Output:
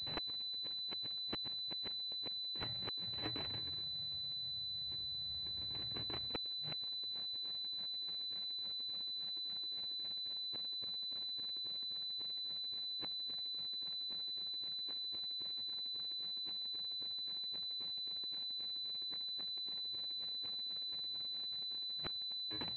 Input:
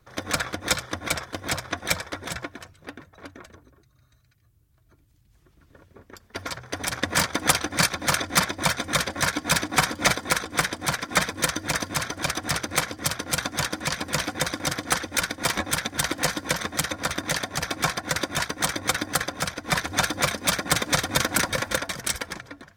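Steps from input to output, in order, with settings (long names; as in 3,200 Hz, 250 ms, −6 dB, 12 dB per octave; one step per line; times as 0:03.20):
samples in bit-reversed order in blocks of 64 samples
brickwall limiter −12.5 dBFS, peak gain reduction 9.5 dB
frequency shifter +26 Hz
gate with flip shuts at −23 dBFS, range −36 dB
switching amplifier with a slow clock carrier 4,000 Hz
level +1 dB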